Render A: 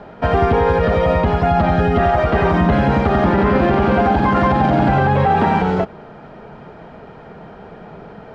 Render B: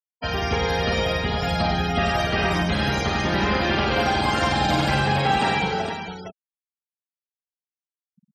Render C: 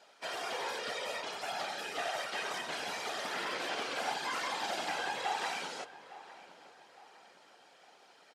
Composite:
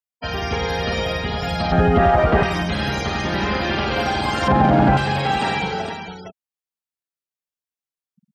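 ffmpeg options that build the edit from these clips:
-filter_complex "[0:a]asplit=2[a][b];[1:a]asplit=3[c][d][e];[c]atrim=end=1.722[f];[a]atrim=start=1.718:end=2.432[g];[d]atrim=start=2.428:end=4.482[h];[b]atrim=start=4.478:end=4.972[i];[e]atrim=start=4.968[j];[f][g]acrossfade=d=0.004:c1=hsin:c2=hsin[k];[k][h]acrossfade=d=0.004:c1=hsin:c2=hsin[l];[l][i]acrossfade=d=0.004:c1=hsin:c2=hsin[m];[m][j]acrossfade=d=0.004:c1=hsin:c2=hsin"

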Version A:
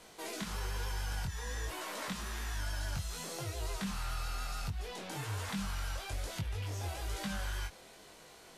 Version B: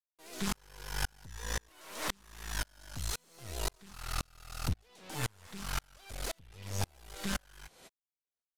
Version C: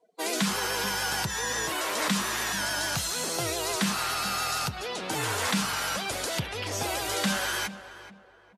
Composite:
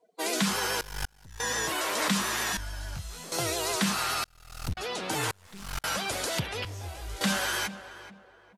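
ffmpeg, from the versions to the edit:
-filter_complex "[1:a]asplit=3[a][b][c];[0:a]asplit=2[d][e];[2:a]asplit=6[f][g][h][i][j][k];[f]atrim=end=0.812[l];[a]atrim=start=0.808:end=1.402[m];[g]atrim=start=1.398:end=2.572[n];[d]atrim=start=2.568:end=3.322[o];[h]atrim=start=3.318:end=4.242[p];[b]atrim=start=4.238:end=4.772[q];[i]atrim=start=4.768:end=5.312[r];[c]atrim=start=5.308:end=5.842[s];[j]atrim=start=5.838:end=6.652[t];[e]atrim=start=6.648:end=7.212[u];[k]atrim=start=7.208[v];[l][m]acrossfade=d=0.004:c1=hsin:c2=hsin[w];[w][n]acrossfade=d=0.004:c1=hsin:c2=hsin[x];[x][o]acrossfade=d=0.004:c1=hsin:c2=hsin[y];[y][p]acrossfade=d=0.004:c1=hsin:c2=hsin[z];[z][q]acrossfade=d=0.004:c1=hsin:c2=hsin[aa];[aa][r]acrossfade=d=0.004:c1=hsin:c2=hsin[ab];[ab][s]acrossfade=d=0.004:c1=hsin:c2=hsin[ac];[ac][t]acrossfade=d=0.004:c1=hsin:c2=hsin[ad];[ad][u]acrossfade=d=0.004:c1=hsin:c2=hsin[ae];[ae][v]acrossfade=d=0.004:c1=hsin:c2=hsin"

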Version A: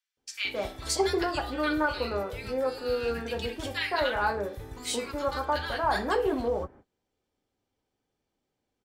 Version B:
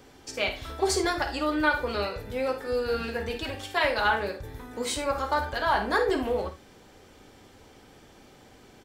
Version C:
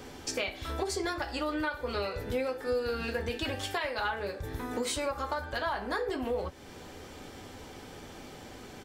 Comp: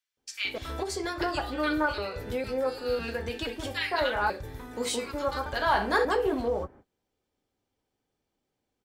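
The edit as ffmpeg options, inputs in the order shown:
-filter_complex "[2:a]asplit=3[a][b][c];[1:a]asplit=2[d][e];[0:a]asplit=6[f][g][h][i][j][k];[f]atrim=end=0.582[l];[a]atrim=start=0.578:end=1.212[m];[g]atrim=start=1.208:end=1.982[n];[b]atrim=start=1.978:end=2.442[o];[h]atrim=start=2.438:end=2.992[p];[c]atrim=start=2.988:end=3.472[q];[i]atrim=start=3.468:end=4.302[r];[d]atrim=start=4.298:end=4.892[s];[j]atrim=start=4.888:end=5.462[t];[e]atrim=start=5.458:end=6.052[u];[k]atrim=start=6.048[v];[l][m]acrossfade=d=0.004:c1=hsin:c2=hsin[w];[w][n]acrossfade=d=0.004:c1=hsin:c2=hsin[x];[x][o]acrossfade=d=0.004:c1=hsin:c2=hsin[y];[y][p]acrossfade=d=0.004:c1=hsin:c2=hsin[z];[z][q]acrossfade=d=0.004:c1=hsin:c2=hsin[aa];[aa][r]acrossfade=d=0.004:c1=hsin:c2=hsin[ab];[ab][s]acrossfade=d=0.004:c1=hsin:c2=hsin[ac];[ac][t]acrossfade=d=0.004:c1=hsin:c2=hsin[ad];[ad][u]acrossfade=d=0.004:c1=hsin:c2=hsin[ae];[ae][v]acrossfade=d=0.004:c1=hsin:c2=hsin"

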